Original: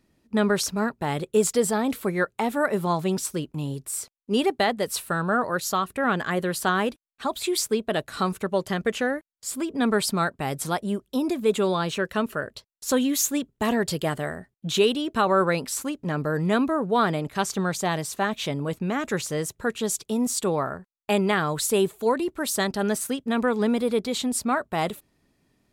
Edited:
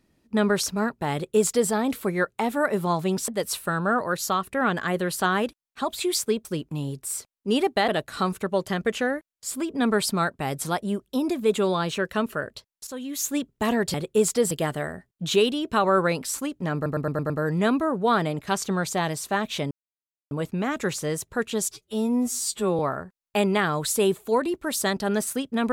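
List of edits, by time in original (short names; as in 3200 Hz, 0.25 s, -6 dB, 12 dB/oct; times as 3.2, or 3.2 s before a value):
1.13–1.7 copy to 13.94
3.28–4.71 move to 7.88
12.87–13.37 fade in quadratic, from -14.5 dB
16.18 stutter 0.11 s, 6 plays
18.59 insert silence 0.60 s
19.99–20.53 stretch 2×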